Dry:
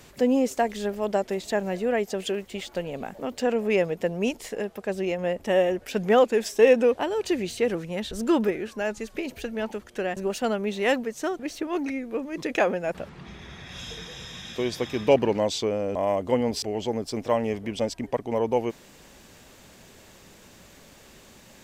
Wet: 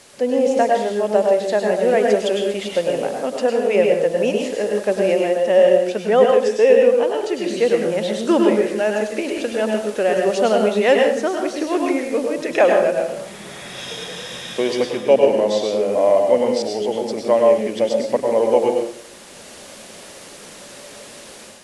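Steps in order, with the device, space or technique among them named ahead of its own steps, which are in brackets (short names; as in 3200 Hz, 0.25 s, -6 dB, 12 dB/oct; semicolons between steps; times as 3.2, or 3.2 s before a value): filmed off a television (BPF 220–7500 Hz; bell 570 Hz +7 dB 0.49 oct; reverb RT60 0.55 s, pre-delay 95 ms, DRR 1.5 dB; white noise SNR 25 dB; AGC gain up to 7.5 dB; gain -1 dB; AAC 96 kbps 24000 Hz)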